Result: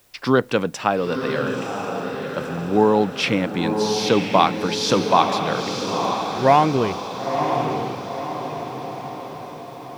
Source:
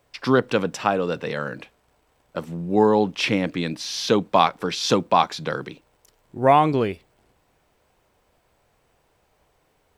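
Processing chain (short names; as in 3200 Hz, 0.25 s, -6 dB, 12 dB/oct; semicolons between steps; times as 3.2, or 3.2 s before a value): diffused feedback echo 0.982 s, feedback 53%, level -5 dB; requantised 10-bit, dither triangular; gain +1 dB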